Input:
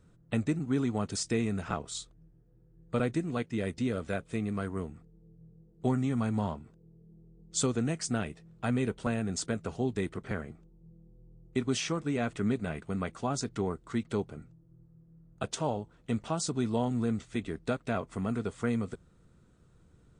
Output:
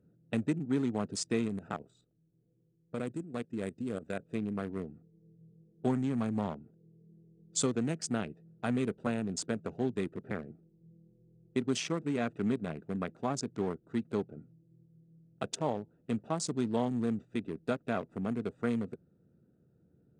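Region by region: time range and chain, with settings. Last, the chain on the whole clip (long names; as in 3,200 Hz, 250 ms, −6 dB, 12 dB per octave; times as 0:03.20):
0:01.48–0:04.22: low-pass that shuts in the quiet parts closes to 1,400 Hz, open at −28.5 dBFS + parametric band 7,900 Hz +14 dB 0.31 octaves + output level in coarse steps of 11 dB
whole clip: adaptive Wiener filter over 41 samples; high-pass filter 150 Hz 12 dB per octave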